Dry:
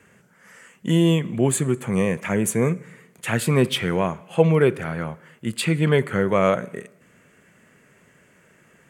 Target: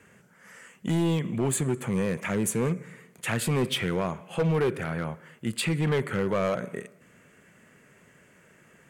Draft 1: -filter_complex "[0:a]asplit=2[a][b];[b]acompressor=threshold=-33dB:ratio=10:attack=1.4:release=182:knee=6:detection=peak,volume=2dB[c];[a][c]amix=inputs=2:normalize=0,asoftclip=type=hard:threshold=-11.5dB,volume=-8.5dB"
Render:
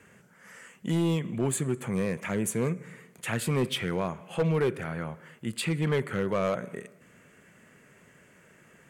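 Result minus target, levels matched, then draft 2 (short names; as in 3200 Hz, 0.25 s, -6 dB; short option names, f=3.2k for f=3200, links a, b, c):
compressor: peak gain reduction +11 dB
-filter_complex "[0:a]asplit=2[a][b];[b]acompressor=threshold=-21dB:ratio=10:attack=1.4:release=182:knee=6:detection=peak,volume=2dB[c];[a][c]amix=inputs=2:normalize=0,asoftclip=type=hard:threshold=-11.5dB,volume=-8.5dB"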